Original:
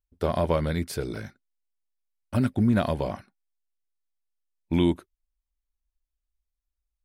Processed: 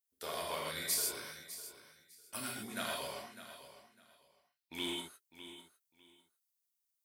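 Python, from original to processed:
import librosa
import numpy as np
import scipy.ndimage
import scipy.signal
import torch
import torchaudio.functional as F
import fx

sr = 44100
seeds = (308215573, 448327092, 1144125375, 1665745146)

p1 = fx.high_shelf_res(x, sr, hz=5500.0, db=-8.0, q=1.5, at=(3.15, 4.75))
p2 = fx.echo_feedback(p1, sr, ms=603, feedback_pct=21, wet_db=-13.5)
p3 = fx.rev_gated(p2, sr, seeds[0], gate_ms=180, shape='flat', drr_db=-3.5)
p4 = np.clip(p3, -10.0 ** (-16.5 / 20.0), 10.0 ** (-16.5 / 20.0))
p5 = p3 + (p4 * 10.0 ** (-9.5 / 20.0))
y = np.diff(p5, prepend=0.0)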